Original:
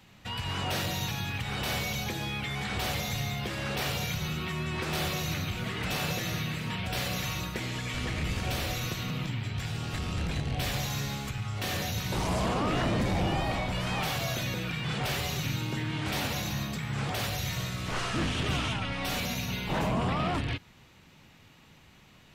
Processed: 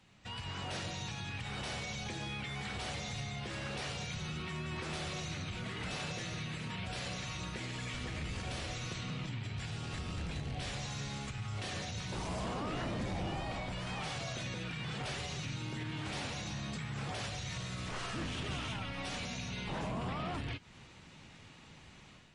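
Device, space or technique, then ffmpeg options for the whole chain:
low-bitrate web radio: -af "dynaudnorm=framelen=850:gausssize=3:maxgain=9dB,alimiter=limit=-24dB:level=0:latency=1:release=207,volume=-7.5dB" -ar 24000 -c:a libmp3lame -b:a 40k

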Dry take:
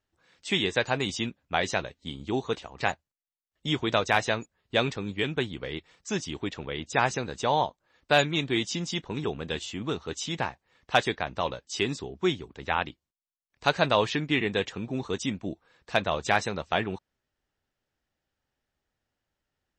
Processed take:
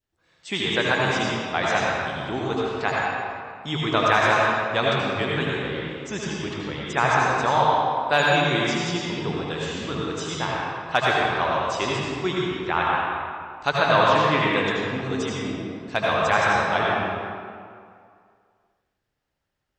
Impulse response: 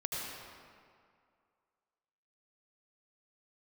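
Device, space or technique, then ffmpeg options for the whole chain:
stairwell: -filter_complex "[0:a]adynamicequalizer=threshold=0.01:dfrequency=1200:dqfactor=1.2:tfrequency=1200:tqfactor=1.2:attack=5:release=100:ratio=0.375:range=4:mode=boostabove:tftype=bell[link_01];[1:a]atrim=start_sample=2205[link_02];[link_01][link_02]afir=irnorm=-1:irlink=0"

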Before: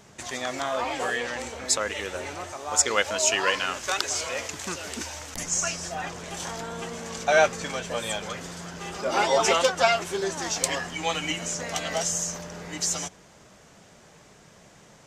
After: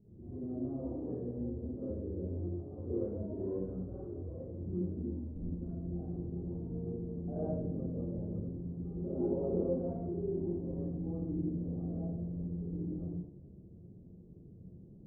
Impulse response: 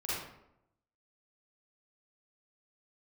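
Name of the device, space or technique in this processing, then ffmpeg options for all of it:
next room: -filter_complex "[0:a]lowpass=frequency=310:width=0.5412,lowpass=frequency=310:width=1.3066[link_01];[1:a]atrim=start_sample=2205[link_02];[link_01][link_02]afir=irnorm=-1:irlink=0"

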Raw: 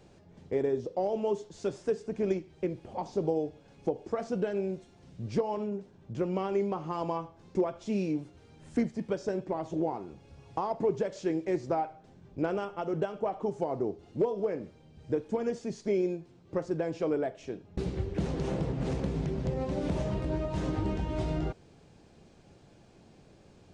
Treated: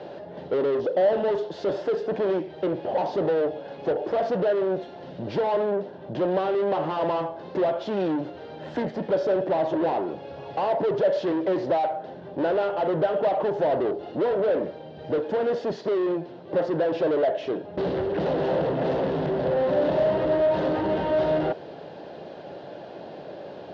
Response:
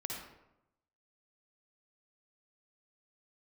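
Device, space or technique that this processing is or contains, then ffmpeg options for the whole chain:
overdrive pedal into a guitar cabinet: -filter_complex "[0:a]asplit=2[link_01][link_02];[link_02]highpass=frequency=720:poles=1,volume=31dB,asoftclip=type=tanh:threshold=-18dB[link_03];[link_01][link_03]amix=inputs=2:normalize=0,lowpass=frequency=1600:poles=1,volume=-6dB,highpass=99,equalizer=frequency=110:width_type=q:width=4:gain=-5,equalizer=frequency=220:width_type=q:width=4:gain=-5,equalizer=frequency=590:width_type=q:width=4:gain=8,equalizer=frequency=1200:width_type=q:width=4:gain=-7,equalizer=frequency=2300:width_type=q:width=4:gain=-10,lowpass=frequency=4200:width=0.5412,lowpass=frequency=4200:width=1.3066"

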